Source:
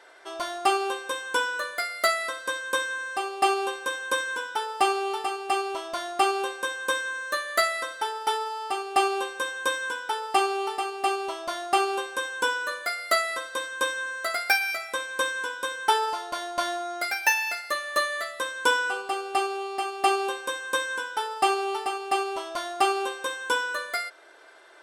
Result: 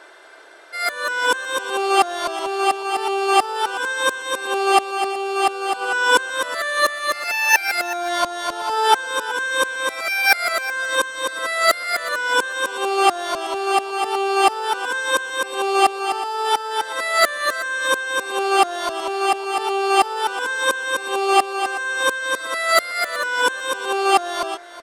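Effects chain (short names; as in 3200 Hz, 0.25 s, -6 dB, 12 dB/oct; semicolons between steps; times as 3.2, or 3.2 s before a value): whole clip reversed; echo 0.372 s -15.5 dB; gain +7 dB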